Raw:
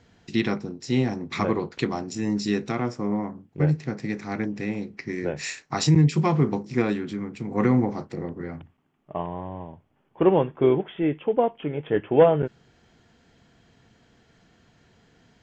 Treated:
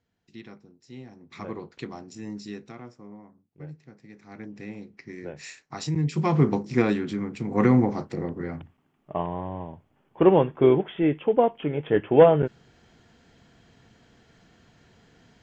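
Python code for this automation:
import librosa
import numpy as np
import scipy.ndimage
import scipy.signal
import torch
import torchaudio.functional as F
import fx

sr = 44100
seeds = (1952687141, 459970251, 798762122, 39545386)

y = fx.gain(x, sr, db=fx.line((1.1, -20.0), (1.53, -10.5), (2.28, -10.5), (3.19, -19.5), (4.08, -19.5), (4.56, -9.5), (5.93, -9.5), (6.41, 1.5)))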